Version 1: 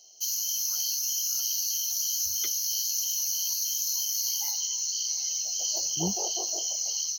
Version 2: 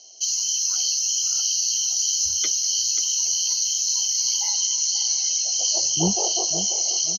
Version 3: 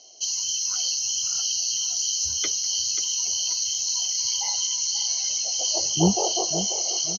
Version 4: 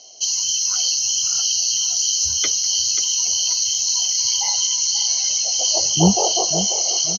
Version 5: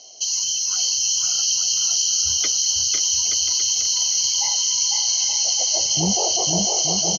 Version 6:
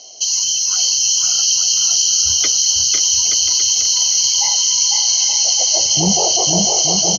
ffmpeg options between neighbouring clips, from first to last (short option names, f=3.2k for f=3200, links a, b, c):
-af "lowpass=f=7.2k:w=0.5412,lowpass=f=7.2k:w=1.3066,aecho=1:1:535|1070|1605|2140:0.251|0.0929|0.0344|0.0127,volume=8dB"
-af "lowpass=f=2.9k:p=1,volume=3.5dB"
-af "equalizer=f=350:w=2.9:g=-5,volume=6dB"
-filter_complex "[0:a]alimiter=limit=-13dB:level=0:latency=1,asplit=2[a][b];[b]aecho=0:1:500|875|1156|1367|1525:0.631|0.398|0.251|0.158|0.1[c];[a][c]amix=inputs=2:normalize=0"
-af "bandreject=f=81.27:t=h:w=4,bandreject=f=162.54:t=h:w=4,bandreject=f=243.81:t=h:w=4,volume=5.5dB"